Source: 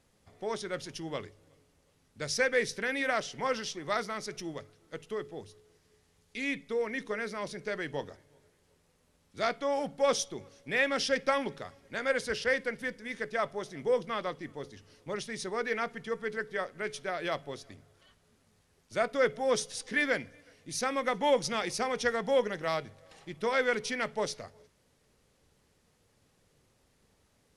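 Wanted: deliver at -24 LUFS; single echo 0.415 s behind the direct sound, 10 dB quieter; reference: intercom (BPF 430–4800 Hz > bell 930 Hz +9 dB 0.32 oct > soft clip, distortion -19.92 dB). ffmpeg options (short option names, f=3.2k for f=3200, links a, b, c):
-af "highpass=430,lowpass=4.8k,equalizer=f=930:t=o:w=0.32:g=9,aecho=1:1:415:0.316,asoftclip=threshold=-18dB,volume=9.5dB"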